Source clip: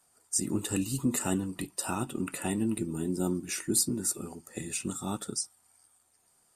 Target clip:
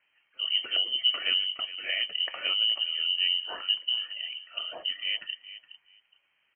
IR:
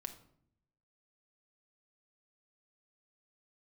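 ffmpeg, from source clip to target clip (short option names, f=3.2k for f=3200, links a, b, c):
-filter_complex "[0:a]asplit=2[a][b];[b]adelay=416,lowpass=f=1.4k:p=1,volume=-14dB,asplit=2[c][d];[d]adelay=416,lowpass=f=1.4k:p=1,volume=0.18[e];[c][e]amix=inputs=2:normalize=0[f];[a][f]amix=inputs=2:normalize=0,lowpass=f=2.7k:t=q:w=0.5098,lowpass=f=2.7k:t=q:w=0.6013,lowpass=f=2.7k:t=q:w=0.9,lowpass=f=2.7k:t=q:w=2.563,afreqshift=-3200,volume=3dB"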